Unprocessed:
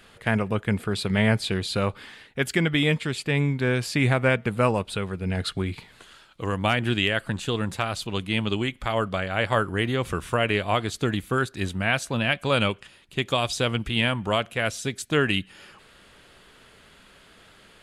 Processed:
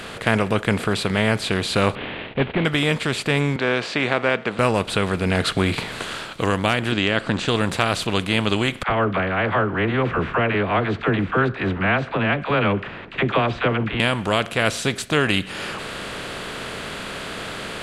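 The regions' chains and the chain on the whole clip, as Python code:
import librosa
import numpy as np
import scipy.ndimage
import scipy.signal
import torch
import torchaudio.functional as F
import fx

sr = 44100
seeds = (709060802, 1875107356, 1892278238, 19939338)

y = fx.chain(x, sr, fx.cvsd(bps=16000),
    fx.peak_eq(hz=1400.0, db=-12.5, octaves=1.2), at=(1.95, 2.65))
y = fx.chain(y, sr, fx.bandpass_edges(low_hz=320.0, high_hz=4900.0),
    fx.air_absorb(metres=84.0), at=(3.56, 4.59))
y = fx.chain(y, sr, fx.lowpass(hz=6500.0, slope=24),
    fx.peak_eq(hz=260.0, db=7.0, octaves=0.92), at=(6.92, 7.48))
y = fx.chain(y, sr, fx.lowpass(hz=2100.0, slope=24),
    fx.peak_eq(hz=560.0, db=-4.0, octaves=0.3),
    fx.dispersion(late='lows', ms=62.0, hz=550.0), at=(8.83, 14.0))
y = fx.bin_compress(y, sr, power=0.6)
y = fx.low_shelf(y, sr, hz=160.0, db=-3.0)
y = fx.rider(y, sr, range_db=4, speed_s=0.5)
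y = y * 10.0 ** (1.5 / 20.0)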